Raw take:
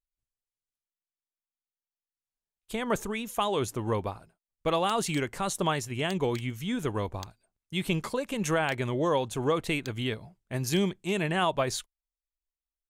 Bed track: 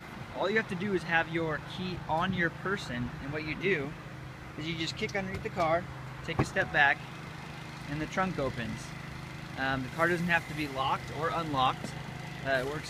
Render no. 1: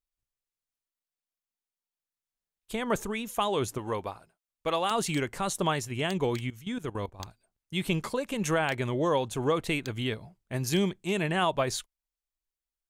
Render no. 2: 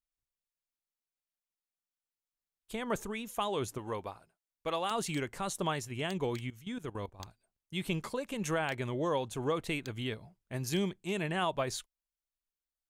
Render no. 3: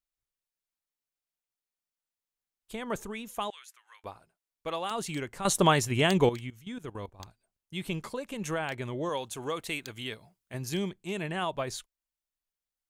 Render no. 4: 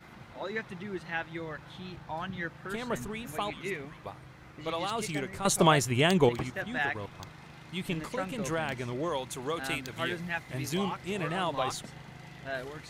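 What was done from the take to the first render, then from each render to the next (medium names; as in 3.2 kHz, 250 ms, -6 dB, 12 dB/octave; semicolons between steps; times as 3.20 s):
3.78–4.91 s: bass shelf 300 Hz -9 dB; 6.48–7.20 s: level held to a coarse grid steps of 16 dB
trim -5.5 dB
3.50–4.04 s: ladder high-pass 1.4 kHz, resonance 35%; 5.45–6.29 s: gain +11 dB; 9.09–10.54 s: tilt EQ +2 dB/octave
add bed track -7 dB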